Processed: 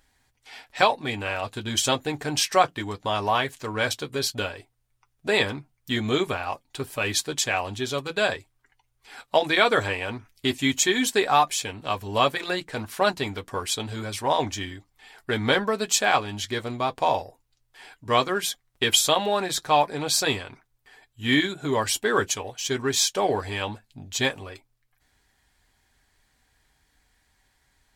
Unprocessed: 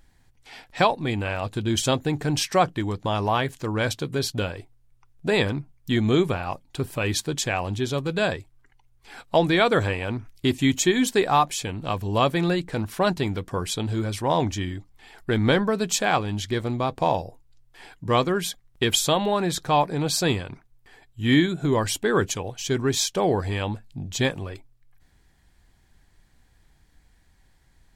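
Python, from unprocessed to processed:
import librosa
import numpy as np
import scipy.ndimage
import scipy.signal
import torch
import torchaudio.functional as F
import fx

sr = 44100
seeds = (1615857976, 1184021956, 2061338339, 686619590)

p1 = fx.low_shelf(x, sr, hz=380.0, db=-11.5)
p2 = np.sign(p1) * np.maximum(np.abs(p1) - 10.0 ** (-37.5 / 20.0), 0.0)
p3 = p1 + (p2 * 10.0 ** (-10.5 / 20.0))
p4 = fx.notch_comb(p3, sr, f0_hz=170.0)
y = p4 * 10.0 ** (2.0 / 20.0)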